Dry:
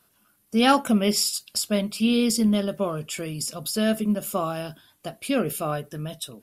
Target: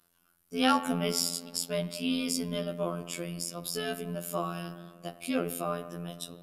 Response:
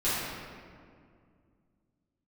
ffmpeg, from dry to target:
-filter_complex "[0:a]asplit=2[link_01][link_02];[1:a]atrim=start_sample=2205,lowpass=3400,adelay=9[link_03];[link_02][link_03]afir=irnorm=-1:irlink=0,volume=-22dB[link_04];[link_01][link_04]amix=inputs=2:normalize=0,afftfilt=real='hypot(re,im)*cos(PI*b)':imag='0':win_size=2048:overlap=0.75,volume=-3dB"

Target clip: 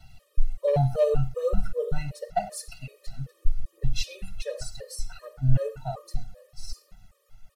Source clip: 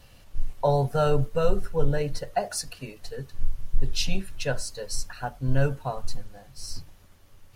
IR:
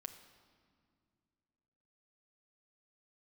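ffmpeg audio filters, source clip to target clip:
-filter_complex "[0:a]aecho=1:1:1.5:0.9,aphaser=in_gain=1:out_gain=1:delay=2.4:decay=0.35:speed=1.3:type=sinusoidal,acrossover=split=130[link_01][link_02];[link_02]volume=9.5dB,asoftclip=hard,volume=-9.5dB[link_03];[link_01][link_03]amix=inputs=2:normalize=0[link_04];[1:a]atrim=start_sample=2205,afade=type=out:start_time=0.18:duration=0.01,atrim=end_sample=8379[link_05];[link_04][link_05]afir=irnorm=-1:irlink=0,afftfilt=real='re*gt(sin(2*PI*2.6*pts/sr)*(1-2*mod(floor(b*sr/1024/320),2)),0)':imag='im*gt(sin(2*PI*2.6*pts/sr)*(1-2*mod(floor(b*sr/1024/320),2)),0)':win_size=1024:overlap=0.75"

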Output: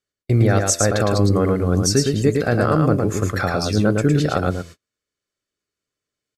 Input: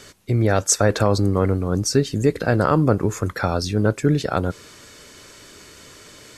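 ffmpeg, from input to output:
ffmpeg -i in.wav -filter_complex "[0:a]bandreject=frequency=84.36:width_type=h:width=4,bandreject=frequency=168.72:width_type=h:width=4,bandreject=frequency=253.08:width_type=h:width=4,bandreject=frequency=337.44:width_type=h:width=4,bandreject=frequency=421.8:width_type=h:width=4,bandreject=frequency=506.16:width_type=h:width=4,bandreject=frequency=590.52:width_type=h:width=4,bandreject=frequency=674.88:width_type=h:width=4,agate=range=-45dB:threshold=-33dB:ratio=16:detection=peak,alimiter=limit=-9dB:level=0:latency=1:release=489,asuperstop=centerf=930:order=4:qfactor=7.2,asplit=2[link_01][link_02];[link_02]aecho=0:1:110:0.631[link_03];[link_01][link_03]amix=inputs=2:normalize=0,volume=3dB" out.wav

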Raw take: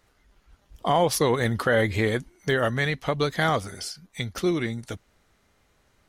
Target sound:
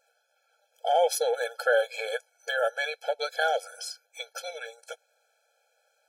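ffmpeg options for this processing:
ffmpeg -i in.wav -af "bandreject=frequency=3600:width=17,afftfilt=real='re*eq(mod(floor(b*sr/1024/440),2),1)':imag='im*eq(mod(floor(b*sr/1024/440),2),1)':win_size=1024:overlap=0.75" out.wav

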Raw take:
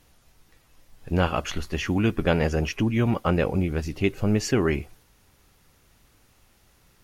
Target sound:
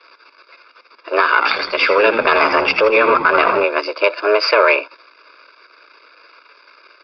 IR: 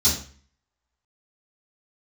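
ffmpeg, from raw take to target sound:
-filter_complex "[0:a]aeval=exprs='if(lt(val(0),0),0.251*val(0),val(0))':channel_layout=same,highpass=460,equalizer=frequency=3200:width_type=o:width=0.4:gain=-13,aecho=1:1:0.9:0.95,afreqshift=210,asettb=1/sr,asplit=3[link_01][link_02][link_03];[link_01]atrim=end=1.294[link_04];[link_02]atrim=start=1.29:end=3.64,asetpts=PTS-STARTPTS,afade=type=in:duration=0.004:curve=qsin,afade=type=out:start_time=2.346:duration=0.004:curve=qsin,asplit=6[link_05][link_06][link_07][link_08][link_09][link_10];[link_06]adelay=81,afreqshift=-92,volume=-10.5dB[link_11];[link_07]adelay=162,afreqshift=-184,volume=-17.6dB[link_12];[link_08]adelay=243,afreqshift=-276,volume=-24.8dB[link_13];[link_09]adelay=324,afreqshift=-368,volume=-31.9dB[link_14];[link_10]adelay=405,afreqshift=-460,volume=-39dB[link_15];[link_05][link_11][link_12][link_13][link_14][link_15]amix=inputs=6:normalize=0,atrim=end_sample=103635[link_16];[link_03]atrim=start=3.636[link_17];[link_04][link_16]acrossfade=duration=0.004:curve1=hsin:curve2=qsin[link_18];[link_18][link_17]acrossfade=duration=0.004:curve1=qsin:curve2=hsin,aresample=11025,aresample=44100,alimiter=level_in=22dB:limit=-1dB:release=50:level=0:latency=1,volume=-1dB"

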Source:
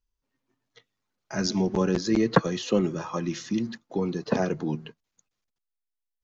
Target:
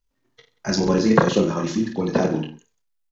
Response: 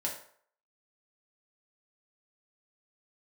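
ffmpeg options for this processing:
-filter_complex "[0:a]aecho=1:1:50|110|182|268.4|372.1:0.631|0.398|0.251|0.158|0.1,asplit=2[link_01][link_02];[1:a]atrim=start_sample=2205,highshelf=frequency=5000:gain=-2.5,adelay=47[link_03];[link_02][link_03]afir=irnorm=-1:irlink=0,volume=-16dB[link_04];[link_01][link_04]amix=inputs=2:normalize=0,atempo=2,volume=4.5dB"

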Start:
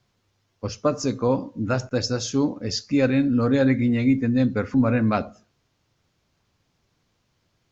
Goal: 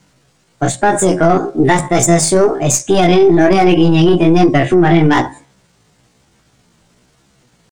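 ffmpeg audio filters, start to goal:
ffmpeg -i in.wav -af "aeval=exprs='0.376*(cos(1*acos(clip(val(0)/0.376,-1,1)))-cos(1*PI/2))+0.0376*(cos(4*acos(clip(val(0)/0.376,-1,1)))-cos(4*PI/2))+0.0119*(cos(5*acos(clip(val(0)/0.376,-1,1)))-cos(5*PI/2))+0.0119*(cos(6*acos(clip(val(0)/0.376,-1,1)))-cos(6*PI/2))+0.00944*(cos(8*acos(clip(val(0)/0.376,-1,1)))-cos(8*PI/2))':channel_layout=same,bandreject=frequency=393.4:width_type=h:width=4,bandreject=frequency=786.8:width_type=h:width=4,bandreject=frequency=1180.2:width_type=h:width=4,flanger=delay=20:depth=4.9:speed=1.1,asetrate=60591,aresample=44100,atempo=0.727827,alimiter=level_in=18.5dB:limit=-1dB:release=50:level=0:latency=1,volume=-1dB" out.wav

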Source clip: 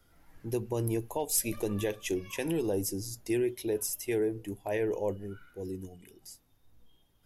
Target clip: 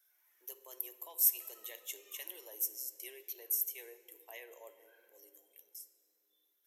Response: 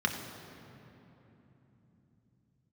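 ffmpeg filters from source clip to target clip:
-filter_complex "[0:a]aexciter=amount=1:drive=4.9:freq=11000,aderivative,asetrate=48000,aresample=44100,highpass=frequency=380:width=0.5412,highpass=frequency=380:width=1.3066,asplit=2[link_01][link_02];[1:a]atrim=start_sample=2205,asetrate=57330,aresample=44100[link_03];[link_02][link_03]afir=irnorm=-1:irlink=0,volume=-11.5dB[link_04];[link_01][link_04]amix=inputs=2:normalize=0,volume=-1dB"

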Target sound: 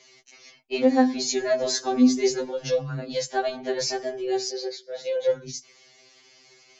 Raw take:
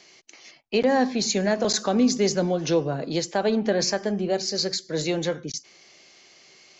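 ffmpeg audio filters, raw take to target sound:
ffmpeg -i in.wav -filter_complex "[0:a]asettb=1/sr,asplit=3[link_01][link_02][link_03];[link_01]atrim=end=4.494[link_04];[link_02]atrim=start=4.49:end=5.3,asetpts=PTS-STARTPTS,afade=type=in:duration=0.004:curve=qsin,afade=type=out:start_time=0.806:duration=0.004:curve=qsin,highpass=490,equalizer=frequency=500:width_type=q:width=4:gain=8,equalizer=frequency=730:width_type=q:width=4:gain=3,equalizer=frequency=1200:width_type=q:width=4:gain=-9,equalizer=frequency=1900:width_type=q:width=4:gain=-5,equalizer=frequency=2700:width_type=q:width=4:gain=-4,equalizer=frequency=4200:width_type=q:width=4:gain=-7,lowpass=frequency=4700:width=0.5412,lowpass=frequency=4700:width=1.3066[link_05];[link_03]atrim=start=5.296[link_06];[link_04][link_05]acrossfade=duration=0.004:curve1=hsin:curve2=qsin[link_07];[link_07][link_06]acrossfade=duration=0.004:curve1=qsin:curve2=hsin,afftfilt=real='re*2.45*eq(mod(b,6),0)':imag='im*2.45*eq(mod(b,6),0)':win_size=2048:overlap=0.75" out.wav

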